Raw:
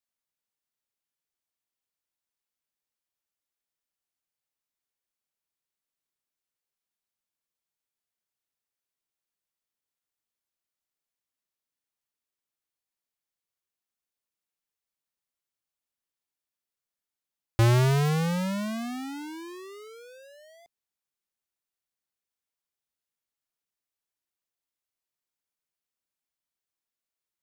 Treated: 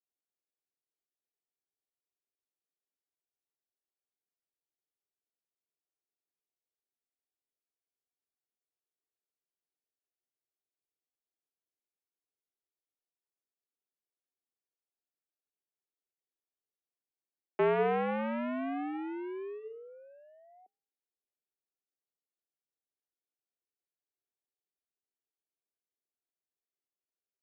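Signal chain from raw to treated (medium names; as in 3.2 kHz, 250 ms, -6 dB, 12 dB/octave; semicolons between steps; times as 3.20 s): local Wiener filter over 41 samples; de-hum 369.7 Hz, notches 39; small resonant body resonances 350/680 Hz, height 7 dB, ringing for 20 ms; mistuned SSB +55 Hz 190–2600 Hz; trim -4.5 dB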